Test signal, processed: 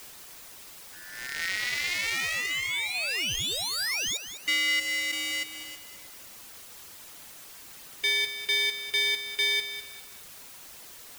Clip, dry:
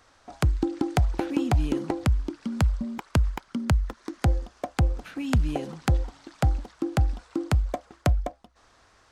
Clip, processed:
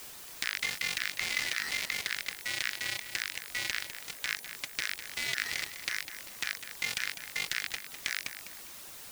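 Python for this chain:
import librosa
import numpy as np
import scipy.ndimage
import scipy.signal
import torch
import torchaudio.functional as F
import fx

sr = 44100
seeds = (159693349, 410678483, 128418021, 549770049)

p1 = fx.cycle_switch(x, sr, every=2, mode='inverted')
p2 = fx.weighting(p1, sr, curve='D')
p3 = p2 * np.sin(2.0 * np.pi * 1600.0 * np.arange(len(p2)) / sr)
p4 = fx.high_shelf_res(p3, sr, hz=1500.0, db=11.0, q=3.0)
p5 = fx.hpss(p4, sr, part='percussive', gain_db=-12)
p6 = fx.leveller(p5, sr, passes=1)
p7 = fx.over_compress(p6, sr, threshold_db=-21.0, ratio=-1.0)
p8 = p6 + (p7 * librosa.db_to_amplitude(0.0))
p9 = fx.power_curve(p8, sr, exponent=2.0)
p10 = fx.dmg_noise_colour(p9, sr, seeds[0], colour='white', level_db=-39.0)
p11 = 10.0 ** (-7.5 / 20.0) * np.tanh(p10 / 10.0 ** (-7.5 / 20.0))
p12 = fx.dereverb_blind(p11, sr, rt60_s=0.51)
p13 = p12 + fx.echo_feedback(p12, sr, ms=202, feedback_pct=31, wet_db=-11.0, dry=0)
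y = p13 * librosa.db_to_amplitude(-7.0)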